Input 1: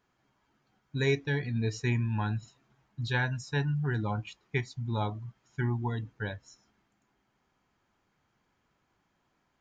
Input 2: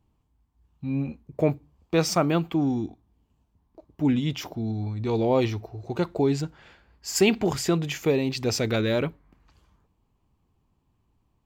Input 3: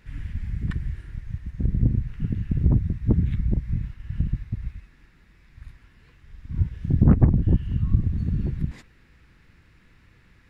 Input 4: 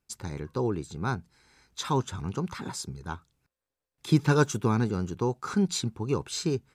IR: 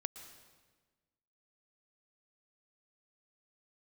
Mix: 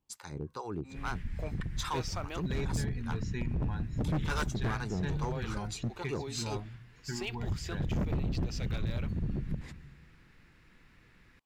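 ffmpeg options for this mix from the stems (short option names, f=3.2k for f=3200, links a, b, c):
-filter_complex "[0:a]lowshelf=f=160:g=10.5,bandreject=f=60:t=h:w=6,bandreject=f=120:t=h:w=6,adelay=1500,volume=-5dB[a];[1:a]highpass=f=1.2k:p=1,acrossover=split=6300[b][c];[c]acompressor=threshold=-46dB:ratio=4:attack=1:release=60[d];[b][d]amix=inputs=2:normalize=0,volume=-7.5dB[e];[2:a]adelay=900,volume=-5.5dB,asplit=2[f][g];[g]volume=-6dB[h];[3:a]acrossover=split=650[i][j];[i]aeval=exprs='val(0)*(1-1/2+1/2*cos(2*PI*2.4*n/s))':c=same[k];[j]aeval=exprs='val(0)*(1-1/2-1/2*cos(2*PI*2.4*n/s))':c=same[l];[k][l]amix=inputs=2:normalize=0,volume=-1dB[m];[a][e][f]amix=inputs=3:normalize=0,equalizer=f=73:t=o:w=1:g=-14.5,acompressor=threshold=-36dB:ratio=2,volume=0dB[n];[4:a]atrim=start_sample=2205[o];[h][o]afir=irnorm=-1:irlink=0[p];[m][n][p]amix=inputs=3:normalize=0,volume=27.5dB,asoftclip=hard,volume=-27.5dB"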